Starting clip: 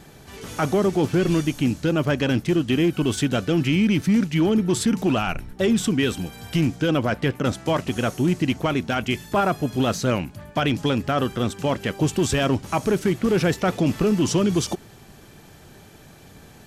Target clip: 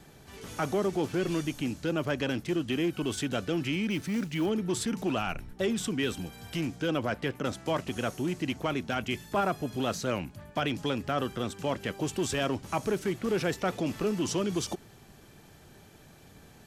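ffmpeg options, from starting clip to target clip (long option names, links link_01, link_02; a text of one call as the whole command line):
ffmpeg -i in.wav -filter_complex "[0:a]acrossover=split=280|2000[link_01][link_02][link_03];[link_01]alimiter=level_in=0.5dB:limit=-24dB:level=0:latency=1,volume=-0.5dB[link_04];[link_04][link_02][link_03]amix=inputs=3:normalize=0,asettb=1/sr,asplit=3[link_05][link_06][link_07];[link_05]atrim=end=3.904[link_08];[link_06]atrim=start=3.9:end=4.46,asetpts=PTS-STARTPTS,afade=type=in:duration=0.004:curve=qsin,afade=type=out:start_time=0.556:duration=0.004:curve=qsin,acrusher=bits=7:mode=log:mix=0:aa=0.000001[link_09];[link_07]atrim=start=4.456[link_10];[link_08][link_09]acrossfade=duration=0.004:curve1=hsin:curve2=qsin[link_11];[link_11][link_10]acrossfade=duration=0.004:curve1=qsin:curve2=hsin,volume=-7dB" out.wav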